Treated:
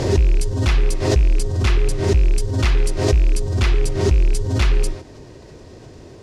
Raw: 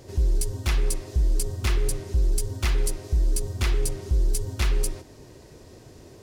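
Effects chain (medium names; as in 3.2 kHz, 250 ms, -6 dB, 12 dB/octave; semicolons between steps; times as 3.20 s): rattle on loud lows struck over -22 dBFS, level -29 dBFS; distance through air 67 m; swell ahead of each attack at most 54 dB/s; trim +6.5 dB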